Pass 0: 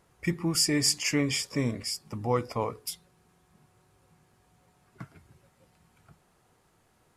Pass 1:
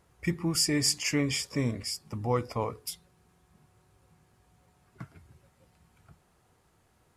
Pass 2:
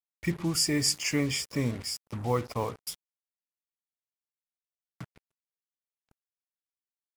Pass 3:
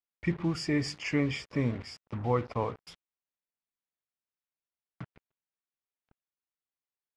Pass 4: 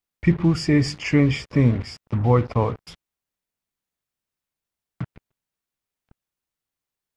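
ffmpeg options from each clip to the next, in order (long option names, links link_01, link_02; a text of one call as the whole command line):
ffmpeg -i in.wav -af "equalizer=frequency=69:width=1.2:gain=6.5,volume=-1.5dB" out.wav
ffmpeg -i in.wav -af "acrusher=bits=6:mix=0:aa=0.5" out.wav
ffmpeg -i in.wav -af "lowpass=2800" out.wav
ffmpeg -i in.wav -af "lowshelf=frequency=220:gain=9,volume=7dB" out.wav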